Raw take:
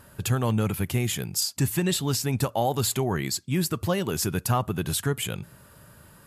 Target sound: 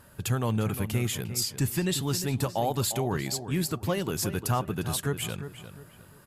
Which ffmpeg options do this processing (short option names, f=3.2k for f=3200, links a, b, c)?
-filter_complex "[0:a]asplit=2[a][b];[b]adelay=353,lowpass=f=3k:p=1,volume=-10.5dB,asplit=2[c][d];[d]adelay=353,lowpass=f=3k:p=1,volume=0.33,asplit=2[e][f];[f]adelay=353,lowpass=f=3k:p=1,volume=0.33,asplit=2[g][h];[h]adelay=353,lowpass=f=3k:p=1,volume=0.33[i];[a][c][e][g][i]amix=inputs=5:normalize=0,volume=-3dB" -ar 48000 -c:a libopus -b:a 64k